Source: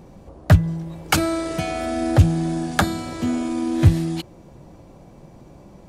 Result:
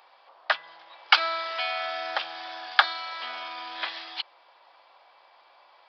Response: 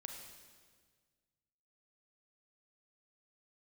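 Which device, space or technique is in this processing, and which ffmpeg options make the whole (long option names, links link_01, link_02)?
musical greeting card: -af "aresample=11025,aresample=44100,highpass=frequency=890:width=0.5412,highpass=frequency=890:width=1.3066,equalizer=frequency=3300:width_type=o:width=0.21:gain=5,volume=2.5dB"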